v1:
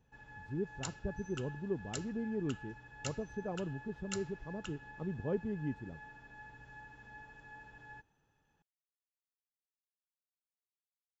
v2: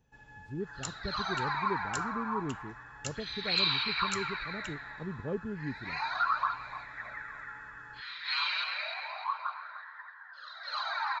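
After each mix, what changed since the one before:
second sound: unmuted; reverb: on, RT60 0.35 s; master: add treble shelf 6 kHz +6.5 dB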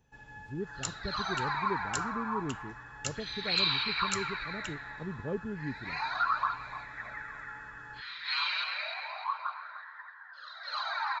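first sound +3.5 dB

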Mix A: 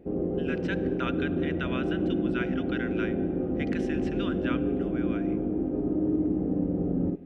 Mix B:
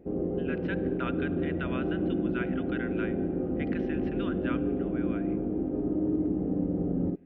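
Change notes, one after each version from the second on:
speech: add distance through air 320 m; background: send -10.0 dB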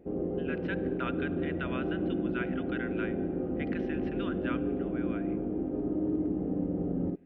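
master: add bass shelf 420 Hz -3.5 dB

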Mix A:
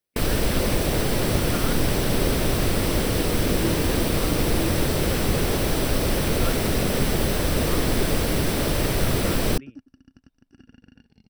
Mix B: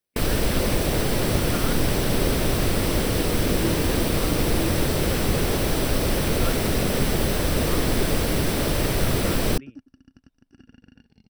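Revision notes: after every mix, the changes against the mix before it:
no change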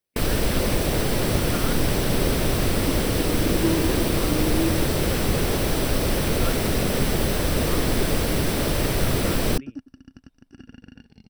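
second sound +6.5 dB

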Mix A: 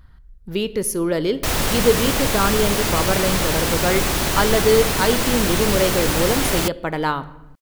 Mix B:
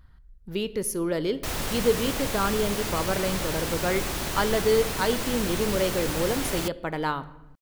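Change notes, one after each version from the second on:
speech -6.0 dB; background -9.5 dB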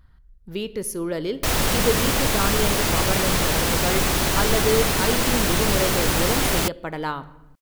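background +9.0 dB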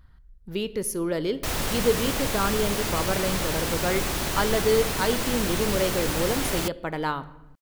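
background -6.5 dB

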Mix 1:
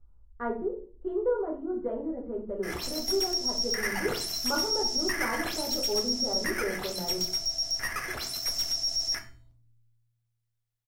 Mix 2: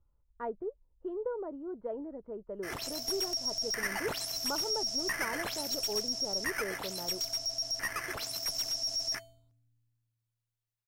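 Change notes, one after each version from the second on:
reverb: off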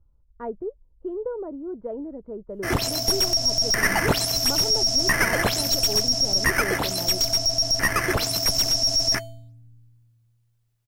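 background +12.0 dB; master: add bass shelf 470 Hz +11 dB

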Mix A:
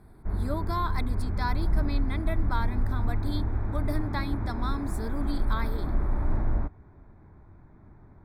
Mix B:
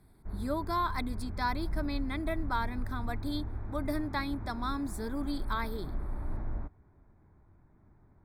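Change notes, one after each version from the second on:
background -9.5 dB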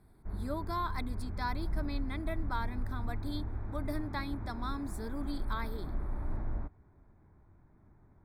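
speech -4.5 dB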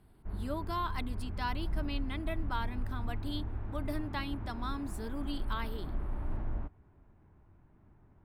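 master: remove Butterworth band-stop 2.9 kHz, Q 2.8

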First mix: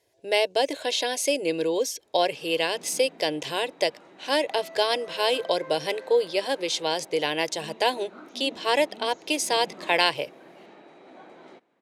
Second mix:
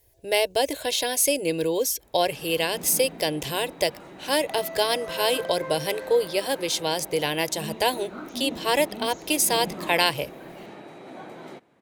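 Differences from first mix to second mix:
background +6.5 dB; master: remove band-pass 230–6400 Hz

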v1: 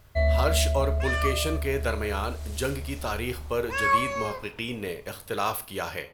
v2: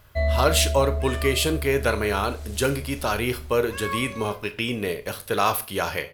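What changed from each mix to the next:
speech +6.0 dB; second sound -8.0 dB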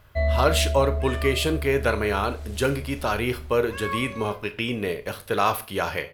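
master: add tone controls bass 0 dB, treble -6 dB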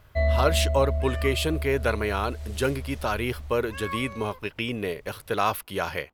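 reverb: off

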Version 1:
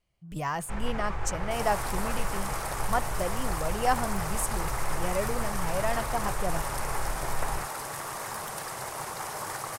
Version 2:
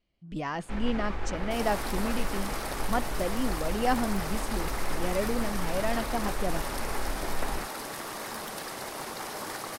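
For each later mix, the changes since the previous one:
speech: add distance through air 79 m; master: add ten-band graphic EQ 125 Hz -9 dB, 250 Hz +10 dB, 1 kHz -4 dB, 4 kHz +5 dB, 8 kHz -5 dB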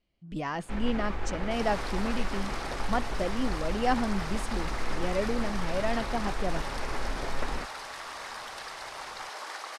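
second sound: add band-pass 740–5900 Hz

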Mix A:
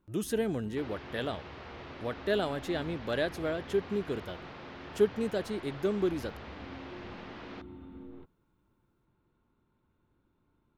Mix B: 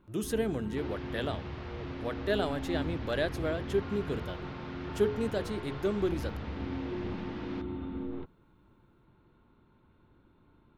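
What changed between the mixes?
speech: add hum notches 60/120/180/240/300/360/420 Hz; first sound +10.0 dB

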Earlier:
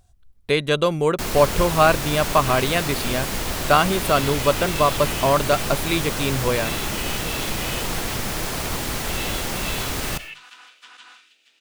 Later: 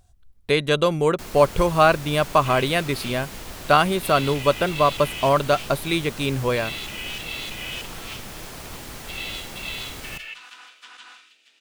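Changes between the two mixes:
first sound -11.0 dB; second sound: send +7.5 dB

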